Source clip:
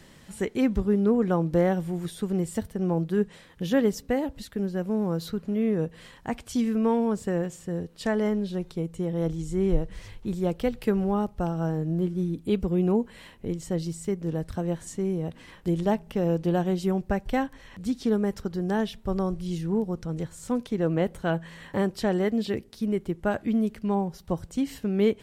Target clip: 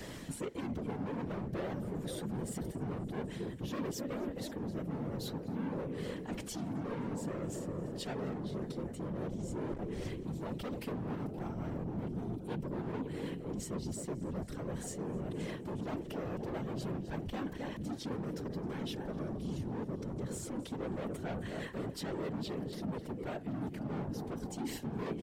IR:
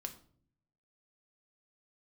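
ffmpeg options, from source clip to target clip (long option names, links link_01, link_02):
-filter_complex "[0:a]equalizer=frequency=100:width=0.57:gain=-3,aecho=1:1:262|524|786|1048|1310:0.15|0.0823|0.0453|0.0249|0.0137,acrossover=split=530|1900[link_01][link_02][link_03];[link_01]acontrast=46[link_04];[link_04][link_02][link_03]amix=inputs=3:normalize=0,asoftclip=type=hard:threshold=-22.5dB,lowshelf=frequency=61:gain=-11,alimiter=level_in=2.5dB:limit=-24dB:level=0:latency=1:release=102,volume=-2.5dB,areverse,acompressor=threshold=-40dB:ratio=12,areverse,asoftclip=type=tanh:threshold=-39dB,afftfilt=real='hypot(re,im)*cos(2*PI*random(0))':imag='hypot(re,im)*sin(2*PI*random(1))':win_size=512:overlap=0.75,volume=12dB"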